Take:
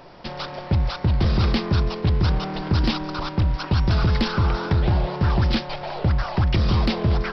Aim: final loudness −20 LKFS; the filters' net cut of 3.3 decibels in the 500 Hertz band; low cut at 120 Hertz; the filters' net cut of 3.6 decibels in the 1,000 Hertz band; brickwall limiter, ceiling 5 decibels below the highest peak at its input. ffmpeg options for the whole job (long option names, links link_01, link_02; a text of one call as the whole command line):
ffmpeg -i in.wav -af "highpass=120,equalizer=frequency=500:width_type=o:gain=-3.5,equalizer=frequency=1000:width_type=o:gain=-3.5,volume=8dB,alimiter=limit=-8dB:level=0:latency=1" out.wav